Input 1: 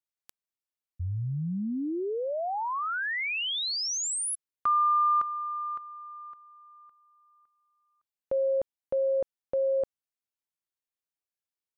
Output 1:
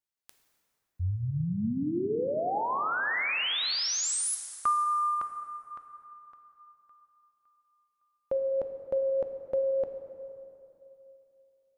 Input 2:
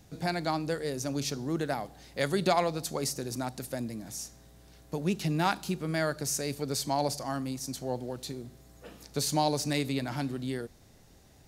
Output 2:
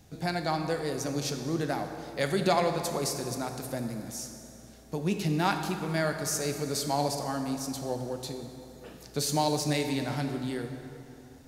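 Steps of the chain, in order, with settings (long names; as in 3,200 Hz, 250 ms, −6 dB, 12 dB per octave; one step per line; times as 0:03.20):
dense smooth reverb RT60 2.9 s, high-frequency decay 0.65×, DRR 5 dB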